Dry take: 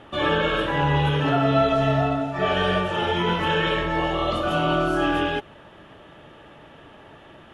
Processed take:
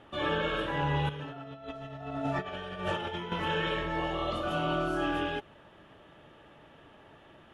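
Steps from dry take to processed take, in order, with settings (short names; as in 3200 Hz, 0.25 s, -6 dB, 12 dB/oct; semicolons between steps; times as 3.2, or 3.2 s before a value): 1.09–3.32 negative-ratio compressor -27 dBFS, ratio -0.5; gain -8.5 dB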